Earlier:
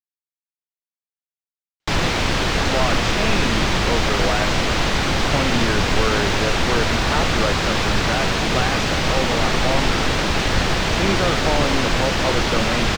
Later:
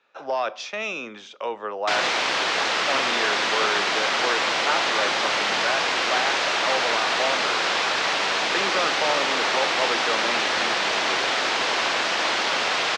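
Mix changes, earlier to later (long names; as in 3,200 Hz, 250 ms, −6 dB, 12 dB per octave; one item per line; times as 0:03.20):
speech: entry −2.45 s
master: add band-pass filter 570–6,500 Hz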